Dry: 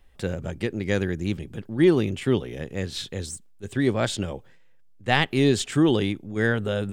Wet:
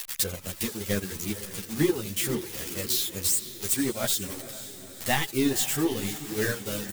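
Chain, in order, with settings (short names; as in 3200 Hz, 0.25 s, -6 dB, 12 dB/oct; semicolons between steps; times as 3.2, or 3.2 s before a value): switching spikes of -12.5 dBFS; echo 79 ms -9 dB; transient shaper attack +6 dB, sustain -6 dB; reverb removal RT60 0.53 s; on a send: diffused feedback echo 0.5 s, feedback 55%, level -13 dB; on the sum: ensemble effect; gain -4.5 dB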